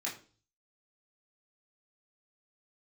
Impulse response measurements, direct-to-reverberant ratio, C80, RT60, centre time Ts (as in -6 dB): -6.5 dB, 15.0 dB, 0.40 s, 25 ms